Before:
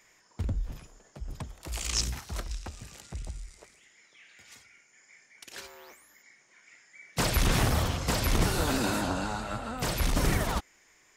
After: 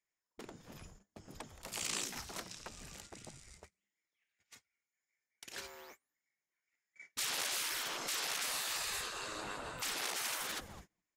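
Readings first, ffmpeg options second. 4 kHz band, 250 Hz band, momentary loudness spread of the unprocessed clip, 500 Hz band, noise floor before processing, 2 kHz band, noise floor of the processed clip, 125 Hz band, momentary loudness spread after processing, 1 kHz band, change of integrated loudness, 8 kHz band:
−4.0 dB, −20.0 dB, 18 LU, −14.5 dB, −63 dBFS, −6.0 dB, below −85 dBFS, −26.5 dB, 20 LU, −10.5 dB, −8.0 dB, −3.5 dB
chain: -filter_complex "[0:a]asplit=4[link_01][link_02][link_03][link_04];[link_02]adelay=209,afreqshift=-120,volume=-20dB[link_05];[link_03]adelay=418,afreqshift=-240,volume=-29.9dB[link_06];[link_04]adelay=627,afreqshift=-360,volume=-39.8dB[link_07];[link_01][link_05][link_06][link_07]amix=inputs=4:normalize=0,agate=range=-29dB:threshold=-50dB:ratio=16:detection=peak,afftfilt=real='re*lt(hypot(re,im),0.0501)':imag='im*lt(hypot(re,im),0.0501)':win_size=1024:overlap=0.75,volume=-2.5dB"

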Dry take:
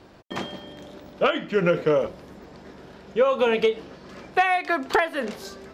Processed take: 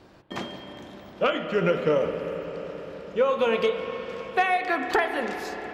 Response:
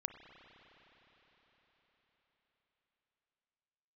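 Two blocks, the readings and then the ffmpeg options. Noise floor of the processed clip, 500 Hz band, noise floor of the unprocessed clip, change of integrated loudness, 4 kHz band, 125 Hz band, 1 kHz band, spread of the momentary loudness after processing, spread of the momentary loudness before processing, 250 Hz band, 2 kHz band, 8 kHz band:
−50 dBFS, −1.5 dB, −49 dBFS, −2.5 dB, −2.0 dB, −1.5 dB, −1.5 dB, 15 LU, 20 LU, −1.5 dB, −1.5 dB, can't be measured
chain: -filter_complex "[1:a]atrim=start_sample=2205[link_01];[0:a][link_01]afir=irnorm=-1:irlink=0"

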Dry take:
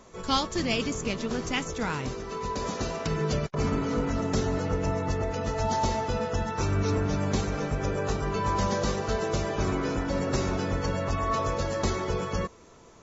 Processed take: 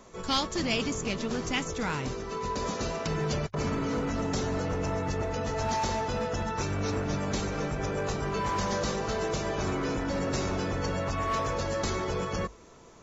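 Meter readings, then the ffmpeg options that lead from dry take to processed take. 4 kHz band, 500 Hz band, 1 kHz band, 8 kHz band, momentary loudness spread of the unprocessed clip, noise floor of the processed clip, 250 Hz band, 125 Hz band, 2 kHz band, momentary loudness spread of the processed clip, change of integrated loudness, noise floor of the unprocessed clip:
0.0 dB, −2.0 dB, −1.5 dB, can't be measured, 4 LU, −52 dBFS, −2.0 dB, −3.5 dB, −0.5 dB, 3 LU, −2.0 dB, −52 dBFS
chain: -filter_complex "[0:a]acrossover=split=1700[link_01][link_02];[link_01]asoftclip=type=hard:threshold=-26.5dB[link_03];[link_03][link_02]amix=inputs=2:normalize=0,bandreject=frequency=50:width_type=h:width=6,bandreject=frequency=100:width_type=h:width=6"

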